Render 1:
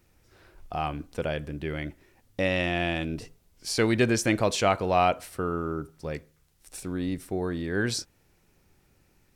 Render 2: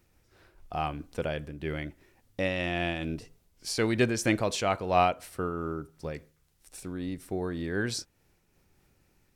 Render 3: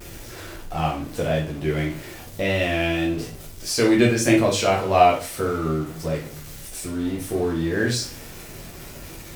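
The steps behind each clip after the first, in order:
random flutter of the level, depth 55%
jump at every zero crossing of -39.5 dBFS; vibrato 1.7 Hz 62 cents; reverberation RT60 0.40 s, pre-delay 7 ms, DRR -3.5 dB; trim +1.5 dB

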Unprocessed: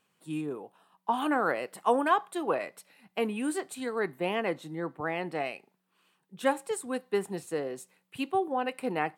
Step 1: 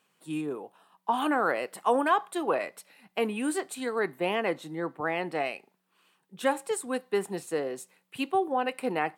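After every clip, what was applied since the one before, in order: high-pass 200 Hz 6 dB/octave; in parallel at -1 dB: peak limiter -20.5 dBFS, peak gain reduction 8 dB; on the sum: trim -2.5 dB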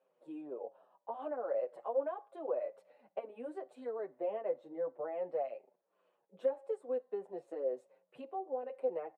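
compression 3:1, threshold -38 dBFS, peak gain reduction 14.5 dB; band-pass filter 560 Hz, Q 6.7; endless flanger 7.3 ms -2.5 Hz; trim +13 dB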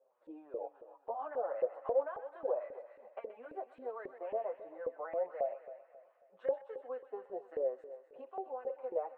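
LFO band-pass saw up 3.7 Hz 460–1900 Hz; feedback echo behind a high-pass 127 ms, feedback 66%, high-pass 1.6 kHz, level -8.5 dB; modulated delay 271 ms, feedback 35%, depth 57 cents, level -15 dB; trim +7 dB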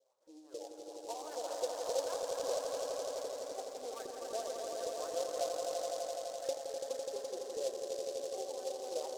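harmonic tremolo 4.9 Hz, depth 70%, crossover 510 Hz; echo with a slow build-up 84 ms, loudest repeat 5, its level -6 dB; delay time shaken by noise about 5.4 kHz, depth 0.072 ms; trim -1 dB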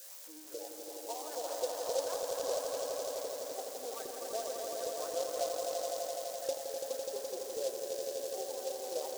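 zero-crossing glitches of -39 dBFS; trim +1 dB

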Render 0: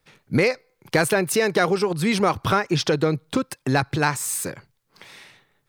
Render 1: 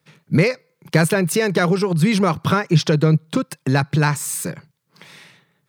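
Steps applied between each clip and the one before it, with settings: high-pass 110 Hz; peaking EQ 160 Hz +11.5 dB 0.56 oct; band-stop 760 Hz, Q 12; trim +1 dB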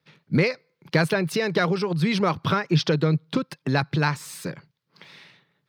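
harmonic-percussive split percussive +3 dB; resonant high shelf 6 kHz -9 dB, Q 1.5; trim -6.5 dB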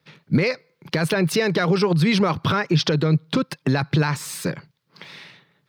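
peak limiter -16.5 dBFS, peak gain reduction 10.5 dB; trim +6.5 dB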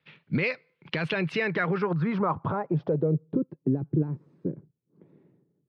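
low-pass sweep 2.8 kHz -> 340 Hz, 1.22–3.53 s; trim -8.5 dB

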